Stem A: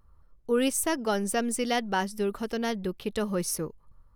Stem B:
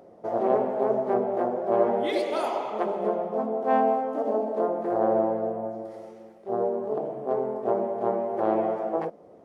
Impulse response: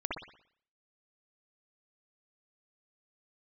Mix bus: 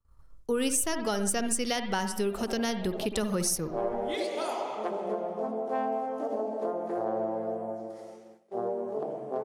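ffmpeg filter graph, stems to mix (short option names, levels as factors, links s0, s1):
-filter_complex "[0:a]volume=1.12,asplit=3[s0][s1][s2];[s1]volume=0.316[s3];[1:a]highpass=92,adelay=2050,volume=0.668[s4];[s2]apad=whole_len=506759[s5];[s4][s5]sidechaincompress=threshold=0.00631:ratio=8:attack=16:release=133[s6];[2:a]atrim=start_sample=2205[s7];[s3][s7]afir=irnorm=-1:irlink=0[s8];[s0][s6][s8]amix=inputs=3:normalize=0,agate=range=0.0224:threshold=0.00501:ratio=3:detection=peak,equalizer=f=7400:t=o:w=1.8:g=9,acrossover=split=140[s9][s10];[s10]acompressor=threshold=0.0398:ratio=3[s11];[s9][s11]amix=inputs=2:normalize=0"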